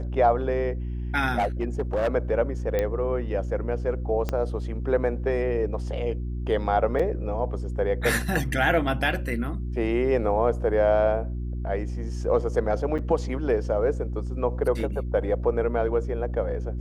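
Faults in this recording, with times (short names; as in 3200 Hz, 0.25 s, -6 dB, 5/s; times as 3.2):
hum 60 Hz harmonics 6 -30 dBFS
1.38–2.09 clipped -20 dBFS
2.79 pop -13 dBFS
4.29 pop -14 dBFS
6.99–7 gap 5.2 ms
12.98–12.99 gap 7 ms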